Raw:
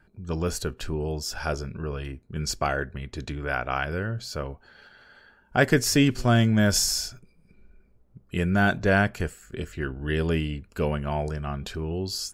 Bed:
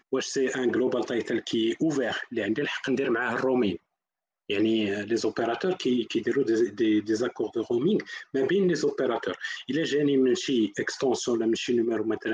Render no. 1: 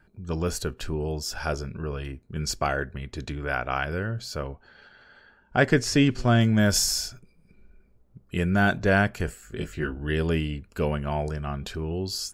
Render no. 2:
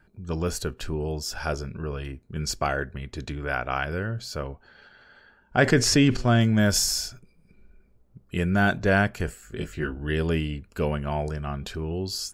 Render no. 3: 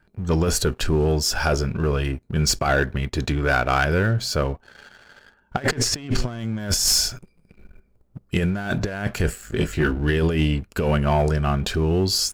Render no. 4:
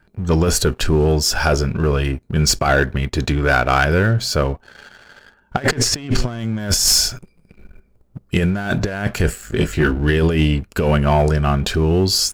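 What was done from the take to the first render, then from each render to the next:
4.47–6.41 air absorption 57 m; 9.26–9.98 doubler 19 ms -4 dB
5.58–6.17 fast leveller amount 50%
negative-ratio compressor -26 dBFS, ratio -0.5; sample leveller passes 2
gain +4.5 dB

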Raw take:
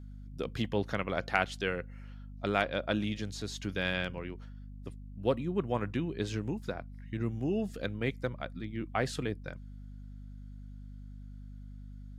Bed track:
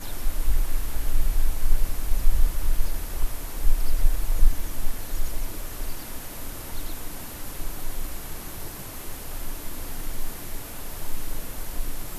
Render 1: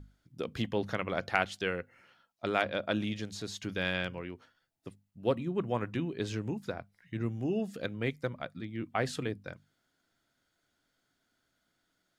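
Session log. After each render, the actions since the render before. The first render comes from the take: notches 50/100/150/200/250 Hz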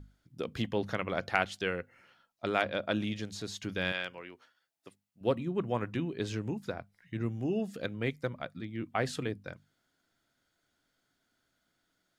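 3.92–5.21 HPF 690 Hz 6 dB/oct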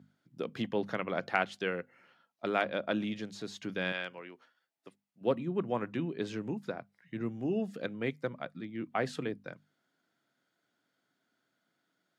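HPF 140 Hz 24 dB/oct; high shelf 4300 Hz -9 dB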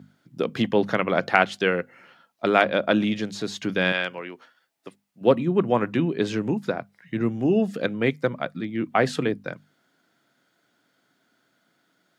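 gain +11.5 dB; limiter -1 dBFS, peak gain reduction 1 dB

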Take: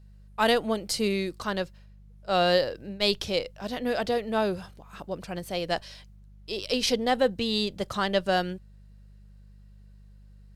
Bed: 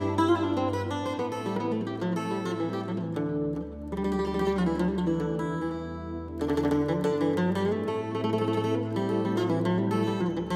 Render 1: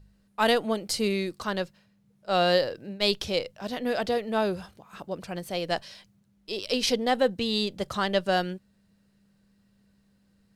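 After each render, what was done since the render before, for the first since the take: de-hum 50 Hz, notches 3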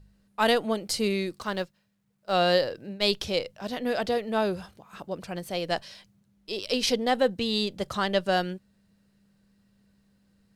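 1.39–2.33 G.711 law mismatch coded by A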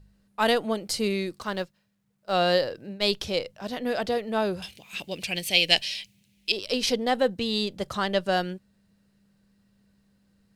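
4.62–6.52 resonant high shelf 1800 Hz +11.5 dB, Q 3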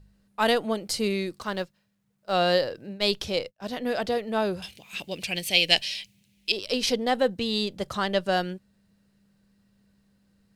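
3.37–4.65 expander -38 dBFS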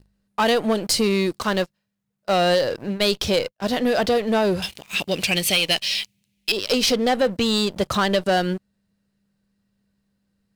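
compressor 3:1, threshold -26 dBFS, peak gain reduction 9.5 dB; sample leveller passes 3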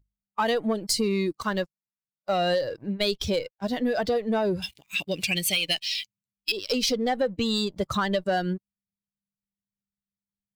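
per-bin expansion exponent 1.5; compressor 2:1, threshold -24 dBFS, peak gain reduction 4.5 dB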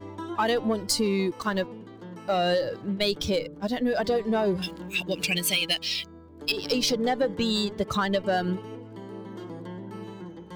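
add bed -12.5 dB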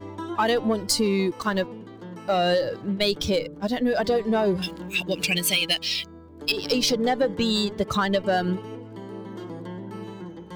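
gain +2.5 dB

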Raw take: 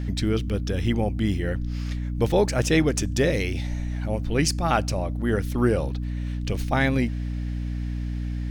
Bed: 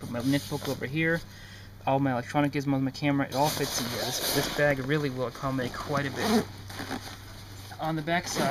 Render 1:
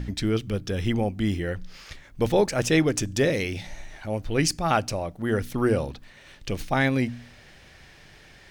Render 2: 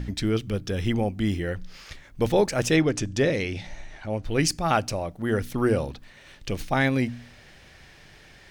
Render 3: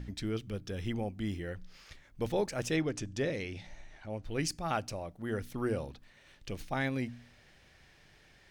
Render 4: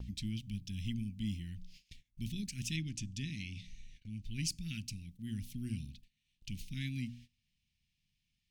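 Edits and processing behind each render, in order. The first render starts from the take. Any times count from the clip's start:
de-hum 60 Hz, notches 5
2.76–4.25 air absorption 54 m
gain -10.5 dB
elliptic band-stop 220–2600 Hz, stop band 50 dB; gate -54 dBFS, range -18 dB

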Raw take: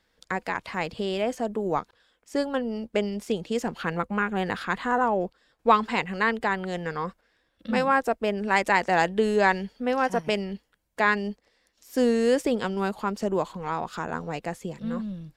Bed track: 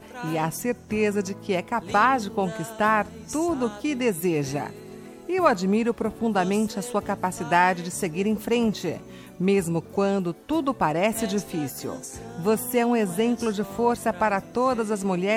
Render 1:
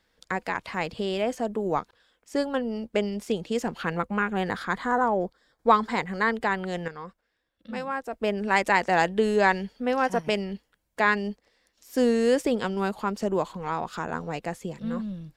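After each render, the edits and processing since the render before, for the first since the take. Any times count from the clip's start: 4.49–6.36 bell 2700 Hz -14.5 dB 0.23 oct; 6.88–8.13 gain -9 dB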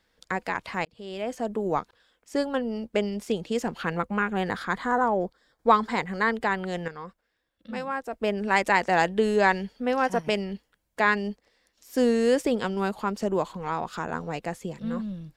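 0.85–1.52 fade in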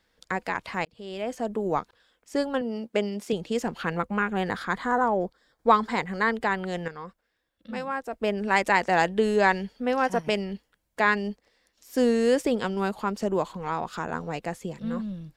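2.61–3.33 HPF 150 Hz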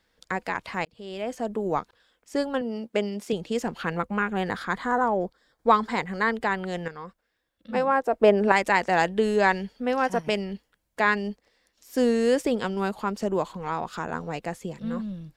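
7.74–8.52 bell 590 Hz +10.5 dB 2.9 oct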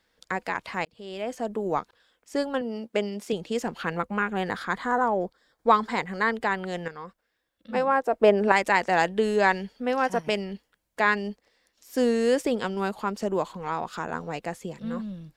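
low shelf 170 Hz -4.5 dB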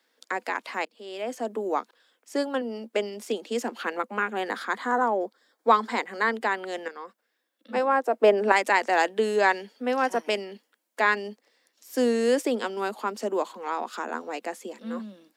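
steep high-pass 220 Hz 72 dB/oct; high shelf 7600 Hz +4 dB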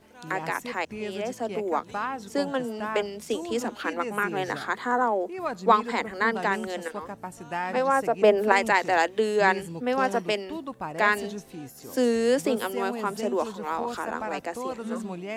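add bed track -11.5 dB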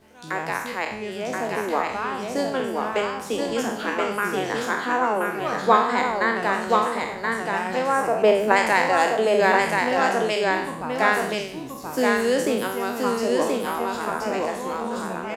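spectral trails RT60 0.68 s; on a send: echo 1.027 s -3 dB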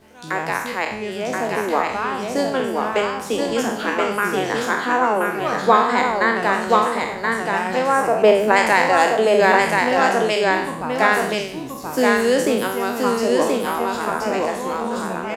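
gain +4 dB; limiter -2 dBFS, peak gain reduction 3 dB

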